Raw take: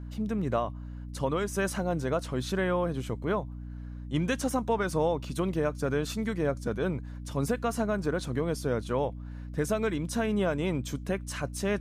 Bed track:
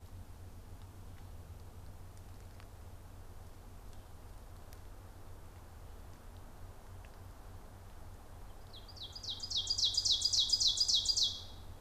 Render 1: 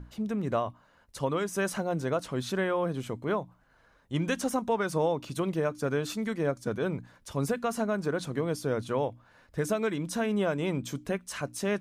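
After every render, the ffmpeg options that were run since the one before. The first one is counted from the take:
-af "bandreject=f=60:t=h:w=6,bandreject=f=120:t=h:w=6,bandreject=f=180:t=h:w=6,bandreject=f=240:t=h:w=6,bandreject=f=300:t=h:w=6"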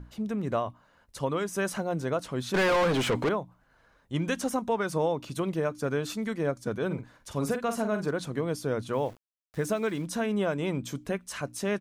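-filter_complex "[0:a]asettb=1/sr,asplit=3[a][b][c];[a]atrim=end=2.544[d];[b]atrim=start=2.54:end=3.29,asetpts=PTS-STARTPTS,afade=t=in:d=0.004:c=qsin,afade=t=out:st=0.746:d=0.004:c=qsin,asplit=2[e][f];[f]highpass=f=720:p=1,volume=32dB,asoftclip=type=tanh:threshold=-17.5dB[g];[e][g]amix=inputs=2:normalize=0,lowpass=f=2.9k:p=1,volume=-6dB[h];[c]atrim=start=3.286[i];[d][h]acrossfade=d=0.004:c1=hsin:c2=qsin[j];[j][i]acrossfade=d=0.004:c1=qsin:c2=hsin,asplit=3[k][l][m];[k]afade=t=out:st=6.9:d=0.02[n];[l]asplit=2[o][p];[p]adelay=47,volume=-8dB[q];[o][q]amix=inputs=2:normalize=0,afade=t=in:st=6.9:d=0.02,afade=t=out:st=8.1:d=0.02[r];[m]afade=t=in:st=8.1:d=0.02[s];[n][r][s]amix=inputs=3:normalize=0,asettb=1/sr,asplit=3[t][u][v];[t]atrim=end=8.934[w];[u]atrim=start=8.93:end=10.05,asetpts=PTS-STARTPTS,afade=t=in:d=0.004:c=qsin,afade=t=out:st=1.116:d=0.004:c=qsin,aeval=exprs='val(0)*gte(abs(val(0)),0.00447)':c=same[x];[v]atrim=start=10.046[y];[w][x]acrossfade=d=0.004:c1=hsin:c2=qsin[z];[z][y]acrossfade=d=0.004:c1=qsin:c2=hsin"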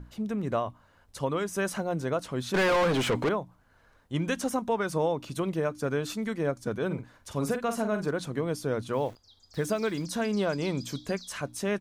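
-filter_complex "[1:a]volume=-17dB[a];[0:a][a]amix=inputs=2:normalize=0"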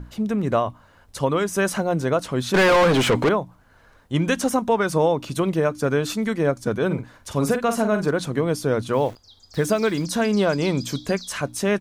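-af "volume=8dB"

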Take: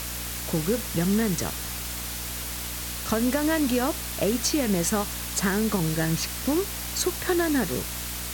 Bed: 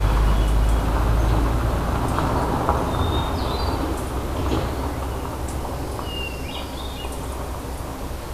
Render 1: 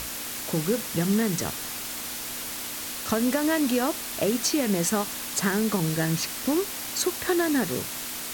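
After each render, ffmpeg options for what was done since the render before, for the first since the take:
-af "bandreject=f=60:t=h:w=6,bandreject=f=120:t=h:w=6,bandreject=f=180:t=h:w=6"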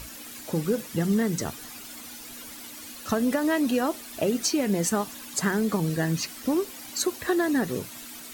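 -af "afftdn=nr=11:nf=-35"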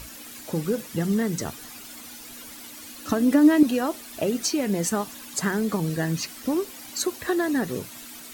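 -filter_complex "[0:a]asettb=1/sr,asplit=3[a][b][c];[a]atrim=end=2.984[d];[b]atrim=start=2.98:end=3.63,asetpts=PTS-STARTPTS,afade=t=in:d=0.004:c=qsin,afade=t=out:st=0.646:d=0.004:c=qsin,equalizer=f=290:t=o:w=0.27:g=13.5[e];[c]atrim=start=3.626[f];[d][e]acrossfade=d=0.004:c1=hsin:c2=qsin[g];[g][f]acrossfade=d=0.004:c1=qsin:c2=hsin"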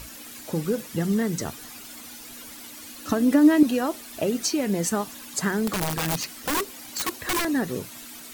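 -filter_complex "[0:a]asettb=1/sr,asplit=3[a][b][c];[a]atrim=end=5.674[d];[b]atrim=start=5.67:end=7.45,asetpts=PTS-STARTPTS,afade=t=in:d=0.004:c=qsin,afade=t=out:st=1.776:d=0.004:c=qsin,aeval=exprs='(mod(10.6*val(0)+1,2)-1)/10.6':c=same[e];[c]atrim=start=7.446[f];[d][e]acrossfade=d=0.004:c1=hsin:c2=qsin[g];[g][f]acrossfade=d=0.004:c1=qsin:c2=hsin"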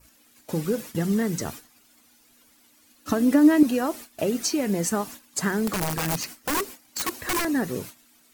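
-af "adynamicequalizer=threshold=0.00355:dfrequency=3500:dqfactor=2.5:tfrequency=3500:tqfactor=2.5:attack=5:release=100:ratio=0.375:range=2.5:mode=cutabove:tftype=bell,agate=range=-17dB:threshold=-38dB:ratio=16:detection=peak"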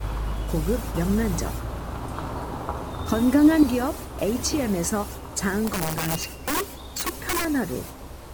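-filter_complex "[1:a]volume=-10dB[a];[0:a][a]amix=inputs=2:normalize=0"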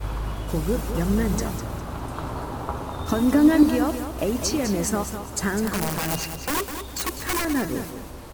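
-af "aecho=1:1:203|406|609:0.355|0.0993|0.0278"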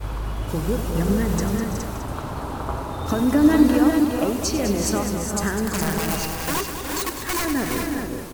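-af "aecho=1:1:95|333|368|416:0.251|0.224|0.398|0.531"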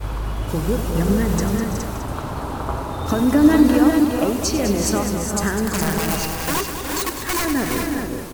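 -af "volume=2.5dB,alimiter=limit=-3dB:level=0:latency=1"

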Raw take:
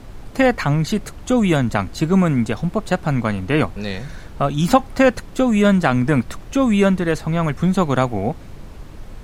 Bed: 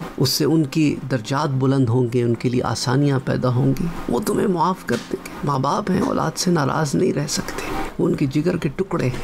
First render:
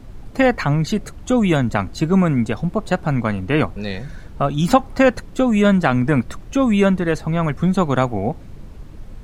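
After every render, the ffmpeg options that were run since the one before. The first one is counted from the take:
-af "afftdn=nr=6:nf=-37"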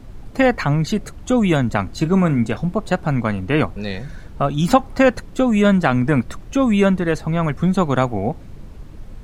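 -filter_complex "[0:a]asettb=1/sr,asplit=3[a][b][c];[a]atrim=end=1.864[d];[b]atrim=start=1.86:end=2.72,asetpts=PTS-STARTPTS,afade=t=in:d=0.004:c=qsin,afade=t=out:st=0.856:d=0.004:c=qsin,asplit=2[e][f];[f]adelay=34,volume=-13.5dB[g];[e][g]amix=inputs=2:normalize=0,atrim=end_sample=37926[h];[c]atrim=start=2.716[i];[d][h]acrossfade=d=0.004:c1=hsin:c2=qsin[j];[j][i]acrossfade=d=0.004:c1=qsin:c2=hsin"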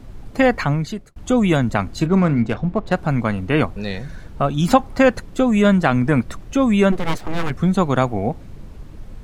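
-filter_complex "[0:a]asettb=1/sr,asplit=3[a][b][c];[a]atrim=end=2.064[d];[b]atrim=start=2.06:end=2.94,asetpts=PTS-STARTPTS,afade=t=in:d=0.004:c=qsin,afade=t=out:st=0.876:d=0.004:c=qsin,adynamicsmooth=sensitivity=3:basefreq=3.1k[e];[c]atrim=start=2.936[f];[d][e]acrossfade=d=0.004:c1=hsin:c2=qsin[g];[g][f]acrossfade=d=0.004:c1=qsin:c2=hsin,asplit=3[h][i][j];[h]afade=t=out:st=6.91:d=0.02[k];[i]aeval=exprs='abs(val(0))':c=same,afade=t=in:st=6.91:d=0.02,afade=t=out:st=7.49:d=0.02[l];[j]afade=t=in:st=7.49:d=0.02[m];[k][l][m]amix=inputs=3:normalize=0,asplit=2[n][o];[n]atrim=end=1.16,asetpts=PTS-STARTPTS,afade=t=out:st=0.64:d=0.52[p];[o]atrim=start=1.16,asetpts=PTS-STARTPTS,afade=t=in:d=0.004:c=hsin[q];[p][q]concat=n=2:v=0:a=1"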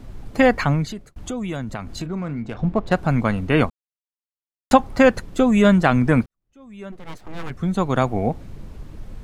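-filter_complex "[0:a]asettb=1/sr,asplit=3[a][b][c];[a]atrim=end=0.854[d];[b]atrim=start=0.85:end=2.59,asetpts=PTS-STARTPTS,afade=t=in:d=0.004:c=qsin,afade=t=out:st=1.736:d=0.004:c=qsin,acompressor=threshold=-28dB:ratio=3:attack=3.2:release=140:knee=1:detection=peak[e];[c]atrim=start=2.586[f];[d][e]acrossfade=d=0.004:c1=hsin:c2=qsin[g];[g][f]acrossfade=d=0.004:c1=qsin:c2=hsin,asplit=4[h][i][j][k];[h]atrim=end=3.7,asetpts=PTS-STARTPTS,afade=t=out:st=3.696:d=0.004:c=hsin[l];[i]atrim=start=3.7:end=4.71,asetpts=PTS-STARTPTS,volume=0[m];[j]atrim=start=4.71:end=6.26,asetpts=PTS-STARTPTS,afade=t=in:d=0.004:c=hsin,afade=t=out:st=1.546:d=0.004:c=hsin[n];[k]atrim=start=6.26,asetpts=PTS-STARTPTS,afade=t=in:d=1.93:c=qua[o];[l][m][n][o]concat=n=4:v=0:a=1"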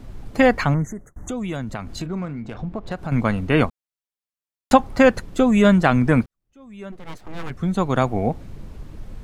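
-filter_complex "[0:a]asettb=1/sr,asplit=3[a][b][c];[a]atrim=end=0.744[d];[b]atrim=start=0.74:end=1.29,asetpts=PTS-STARTPTS,afade=t=in:d=0.004:c=qsin,afade=t=out:st=0.546:d=0.004:c=qsin,asuperstop=centerf=3500:order=20:qfactor=0.92[e];[c]atrim=start=1.286[f];[d][e]acrossfade=d=0.004:c1=hsin:c2=qsin[g];[g][f]acrossfade=d=0.004:c1=qsin:c2=hsin,asettb=1/sr,asplit=3[h][i][j];[h]atrim=end=2.254[k];[i]atrim=start=2.25:end=3.12,asetpts=PTS-STARTPTS,afade=t=in:d=0.004:c=qsin,afade=t=out:st=0.866:d=0.004:c=qsin,acompressor=threshold=-28dB:ratio=2.5:attack=3.2:release=140:knee=1:detection=peak[l];[j]atrim=start=3.116[m];[k][l]acrossfade=d=0.004:c1=hsin:c2=qsin[n];[n][m]acrossfade=d=0.004:c1=qsin:c2=hsin"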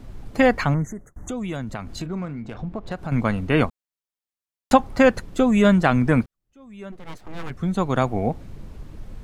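-af "volume=-1.5dB"

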